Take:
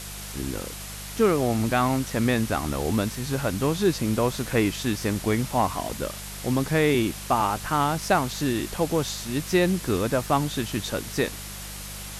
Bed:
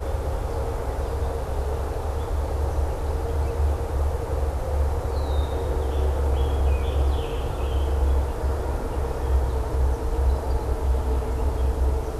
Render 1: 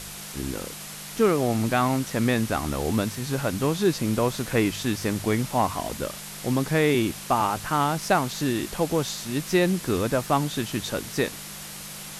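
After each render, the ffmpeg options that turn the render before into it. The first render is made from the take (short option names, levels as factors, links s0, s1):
-af "bandreject=f=50:t=h:w=4,bandreject=f=100:t=h:w=4"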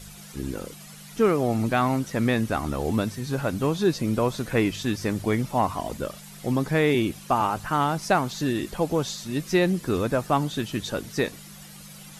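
-af "afftdn=nr=11:nf=-39"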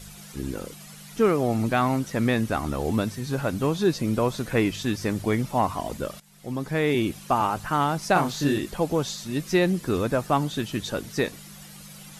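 -filter_complex "[0:a]asettb=1/sr,asplit=3[s0][s1][s2];[s0]atrim=end=8.134[s3];[s1]atrim=start=8.13:end=8.58,asetpts=PTS-STARTPTS,afade=t=in:d=0.004:c=qsin,afade=t=out:st=0.446:d=0.004:c=qsin,asplit=2[s4][s5];[s5]adelay=28,volume=0.75[s6];[s4][s6]amix=inputs=2:normalize=0,atrim=end_sample=19845[s7];[s2]atrim=start=8.576[s8];[s3][s7]acrossfade=d=0.004:c1=hsin:c2=qsin[s9];[s9][s8]acrossfade=d=0.004:c1=qsin:c2=hsin,asplit=2[s10][s11];[s10]atrim=end=6.2,asetpts=PTS-STARTPTS,afade=t=out:st=6.196:d=0.004:c=hsin:silence=0.158489[s12];[s11]atrim=start=6.2,asetpts=PTS-STARTPTS,afade=t=in:d=0.88:silence=0.158489[s13];[s12][s13]concat=n=2:v=0:a=1"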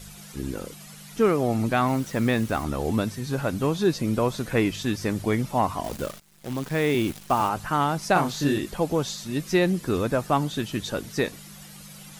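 -filter_complex "[0:a]asettb=1/sr,asplit=3[s0][s1][s2];[s0]atrim=end=1.884[s3];[s1]atrim=start=1.88:end=2.64,asetpts=PTS-STARTPTS,afade=t=in:d=0.004:c=qsin,afade=t=out:st=0.756:d=0.004:c=qsin,acrusher=bits=8:dc=4:mix=0:aa=0.000001[s4];[s2]atrim=start=2.636[s5];[s3][s4]acrossfade=d=0.004:c1=hsin:c2=qsin[s6];[s6][s5]acrossfade=d=0.004:c1=qsin:c2=hsin,asettb=1/sr,asplit=3[s7][s8][s9];[s7]atrim=end=5.844[s10];[s8]atrim=start=5.84:end=7.49,asetpts=PTS-STARTPTS,afade=t=in:d=0.004:c=qsin,afade=t=out:st=1.646:d=0.004:c=qsin,acrusher=bits=7:dc=4:mix=0:aa=0.000001[s11];[s9]atrim=start=7.486[s12];[s10][s11]acrossfade=d=0.004:c1=hsin:c2=qsin[s13];[s13][s12]acrossfade=d=0.004:c1=qsin:c2=hsin"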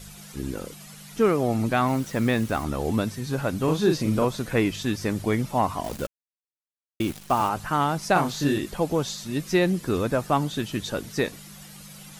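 -filter_complex "[0:a]asettb=1/sr,asplit=3[s0][s1][s2];[s0]atrim=end=3.644[s3];[s1]atrim=start=3.64:end=4.25,asetpts=PTS-STARTPTS,afade=t=in:d=0.004:c=qsin,afade=t=out:st=0.606:d=0.004:c=qsin,asplit=2[s4][s5];[s5]adelay=38,volume=0.596[s6];[s4][s6]amix=inputs=2:normalize=0,atrim=end_sample=26901[s7];[s2]atrim=start=4.246[s8];[s3][s7]acrossfade=d=0.004:c1=hsin:c2=qsin[s9];[s9][s8]acrossfade=d=0.004:c1=qsin:c2=hsin,asplit=3[s10][s11][s12];[s10]atrim=end=6.07,asetpts=PTS-STARTPTS,afade=t=out:st=6.066:d=0.004:c=hsin[s13];[s11]atrim=start=6.07:end=7,asetpts=PTS-STARTPTS,volume=0[s14];[s12]atrim=start=7,asetpts=PTS-STARTPTS,afade=t=in:d=0.004:c=hsin[s15];[s13][s14][s15]concat=n=3:v=0:a=1"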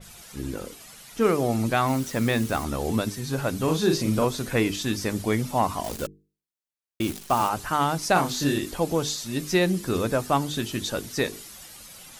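-af "bandreject=f=50:t=h:w=6,bandreject=f=100:t=h:w=6,bandreject=f=150:t=h:w=6,bandreject=f=200:t=h:w=6,bandreject=f=250:t=h:w=6,bandreject=f=300:t=h:w=6,bandreject=f=350:t=h:w=6,bandreject=f=400:t=h:w=6,bandreject=f=450:t=h:w=6,adynamicequalizer=threshold=0.00891:dfrequency=3400:dqfactor=0.7:tfrequency=3400:tqfactor=0.7:attack=5:release=100:ratio=0.375:range=2.5:mode=boostabove:tftype=highshelf"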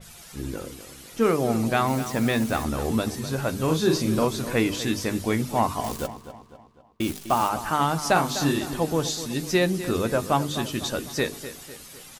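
-filter_complex "[0:a]asplit=2[s0][s1];[s1]adelay=13,volume=0.224[s2];[s0][s2]amix=inputs=2:normalize=0,asplit=2[s3][s4];[s4]adelay=251,lowpass=f=4700:p=1,volume=0.237,asplit=2[s5][s6];[s6]adelay=251,lowpass=f=4700:p=1,volume=0.48,asplit=2[s7][s8];[s8]adelay=251,lowpass=f=4700:p=1,volume=0.48,asplit=2[s9][s10];[s10]adelay=251,lowpass=f=4700:p=1,volume=0.48,asplit=2[s11][s12];[s12]adelay=251,lowpass=f=4700:p=1,volume=0.48[s13];[s3][s5][s7][s9][s11][s13]amix=inputs=6:normalize=0"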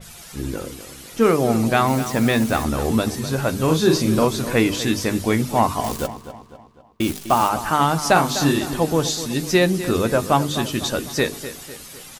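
-af "volume=1.78"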